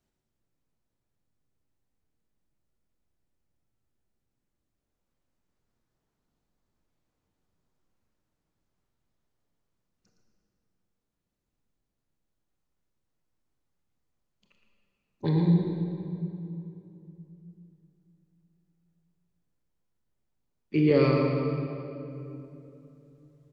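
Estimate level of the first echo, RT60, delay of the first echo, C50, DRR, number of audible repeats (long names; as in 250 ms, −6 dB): −7.5 dB, 3.0 s, 114 ms, 0.5 dB, −0.5 dB, 1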